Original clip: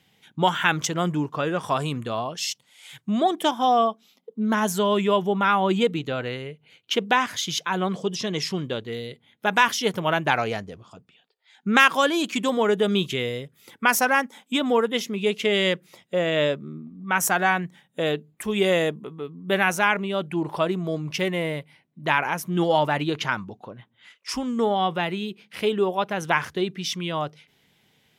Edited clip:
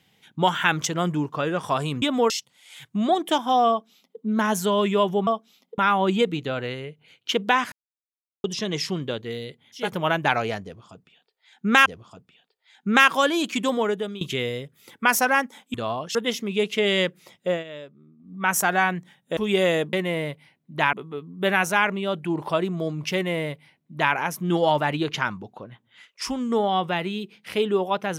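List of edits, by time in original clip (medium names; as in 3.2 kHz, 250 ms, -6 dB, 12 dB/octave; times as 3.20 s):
2.02–2.43 s: swap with 14.54–14.82 s
3.82–4.33 s: copy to 5.40 s
7.34–8.06 s: mute
9.46–9.86 s: delete, crossfade 0.24 s
10.66–11.88 s: loop, 2 plays
12.51–13.01 s: fade out, to -19 dB
16.18–16.99 s: dip -16.5 dB, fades 0.13 s
18.04–18.44 s: delete
21.21–22.21 s: copy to 19.00 s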